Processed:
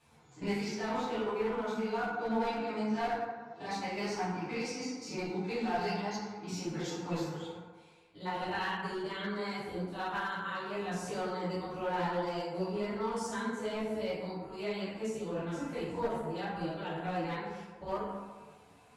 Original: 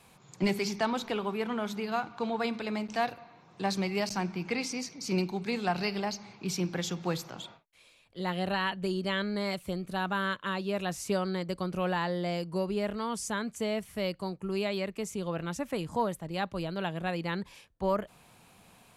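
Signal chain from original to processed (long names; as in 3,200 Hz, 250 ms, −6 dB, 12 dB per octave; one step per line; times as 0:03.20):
spectrum averaged block by block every 50 ms
low-pass filter 9,000 Hz 12 dB per octave
feedback delay network reverb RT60 1.5 s, low-frequency decay 0.85×, high-frequency decay 0.4×, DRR −9 dB
asymmetric clip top −19.5 dBFS
string-ensemble chorus
level −7.5 dB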